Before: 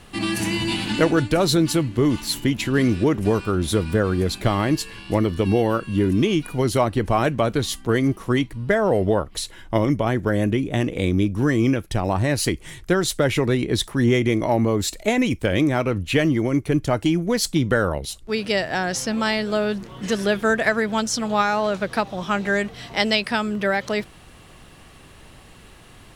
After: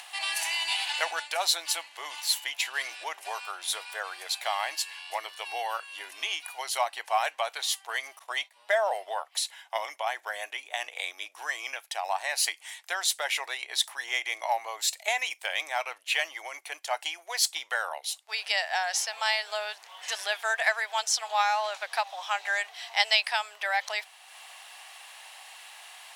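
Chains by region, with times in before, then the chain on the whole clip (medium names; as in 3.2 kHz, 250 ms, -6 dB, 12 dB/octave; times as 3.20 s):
8.19–8.93 s: expander -31 dBFS + small resonant body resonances 600/3600 Hz, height 9 dB, ringing for 25 ms
whole clip: elliptic high-pass 750 Hz, stop band 80 dB; upward compressor, threshold -38 dBFS; peaking EQ 1.3 kHz -7.5 dB 0.72 oct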